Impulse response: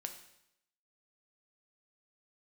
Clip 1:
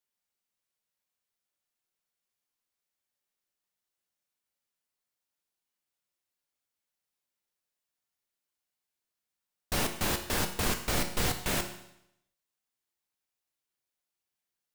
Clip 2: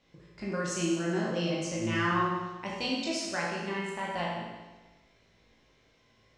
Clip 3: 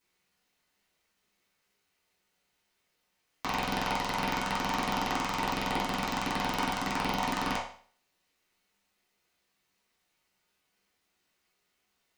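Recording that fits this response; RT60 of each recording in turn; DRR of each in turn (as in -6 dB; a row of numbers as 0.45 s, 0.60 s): 1; 0.80 s, 1.2 s, 0.45 s; 5.0 dB, -5.5 dB, -8.5 dB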